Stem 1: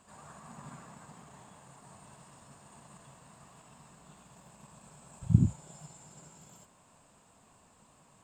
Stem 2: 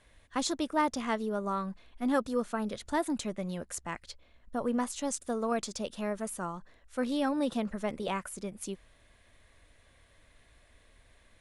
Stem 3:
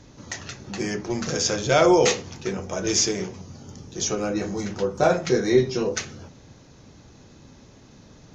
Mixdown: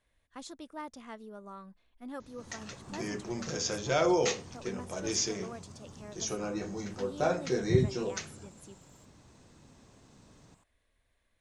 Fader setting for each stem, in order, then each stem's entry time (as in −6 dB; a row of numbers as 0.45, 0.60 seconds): −5.0, −14.0, −9.5 decibels; 2.40, 0.00, 2.20 seconds